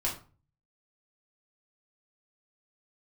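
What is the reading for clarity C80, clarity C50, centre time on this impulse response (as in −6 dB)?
13.5 dB, 8.5 dB, 23 ms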